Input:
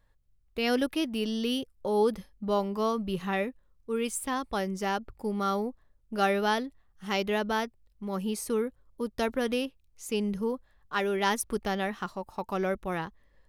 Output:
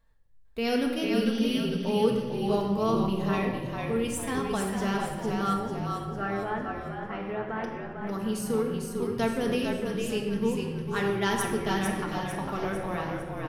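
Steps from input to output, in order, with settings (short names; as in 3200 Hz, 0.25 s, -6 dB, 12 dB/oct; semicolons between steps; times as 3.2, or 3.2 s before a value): 5.53–7.64 ladder low-pass 2300 Hz, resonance 25%; frequency-shifting echo 0.451 s, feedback 48%, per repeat -43 Hz, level -4.5 dB; shoebox room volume 1200 m³, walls mixed, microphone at 1.6 m; gain -3 dB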